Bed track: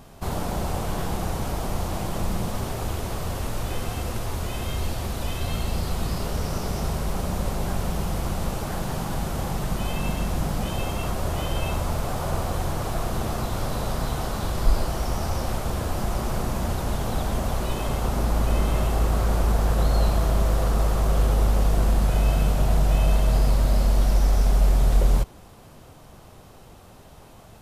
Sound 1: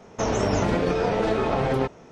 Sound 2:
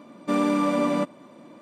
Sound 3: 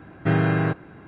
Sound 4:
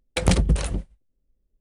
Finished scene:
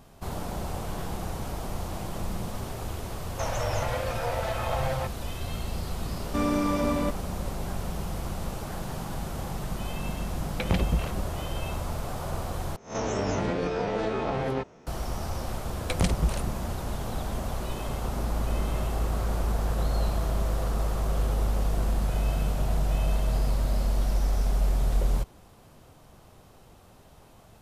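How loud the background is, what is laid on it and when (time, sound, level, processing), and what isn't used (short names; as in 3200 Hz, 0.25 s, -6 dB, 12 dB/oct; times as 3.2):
bed track -6 dB
3.2 add 1 -4.5 dB + FFT band-reject 150–470 Hz
6.06 add 2 -4 dB
10.43 add 4 -5.5 dB + Chebyshev low-pass 2800 Hz
12.76 replace with 1 -6.5 dB + spectral swells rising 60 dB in 0.33 s
15.73 add 4 -6.5 dB
not used: 3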